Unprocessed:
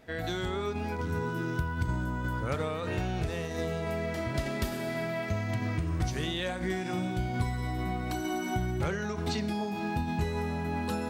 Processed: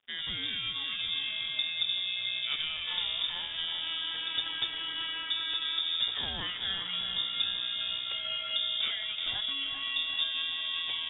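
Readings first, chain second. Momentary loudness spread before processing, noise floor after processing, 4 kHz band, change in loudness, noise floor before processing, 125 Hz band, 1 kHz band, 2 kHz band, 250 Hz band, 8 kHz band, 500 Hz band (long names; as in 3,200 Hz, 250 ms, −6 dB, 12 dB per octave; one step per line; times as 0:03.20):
2 LU, −38 dBFS, +16.0 dB, +2.0 dB, −35 dBFS, −24.0 dB, −10.5 dB, 0.0 dB, −21.5 dB, below −35 dB, −21.0 dB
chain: dead-zone distortion −52 dBFS
feedback echo with a high-pass in the loop 388 ms, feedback 67%, level −8.5 dB
voice inversion scrambler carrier 3,600 Hz
level −2 dB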